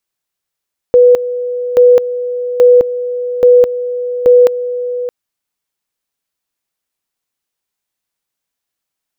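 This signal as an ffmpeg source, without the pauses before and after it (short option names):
-f lavfi -i "aevalsrc='pow(10,(-2.5-13*gte(mod(t,0.83),0.21))/20)*sin(2*PI*492*t)':d=4.15:s=44100"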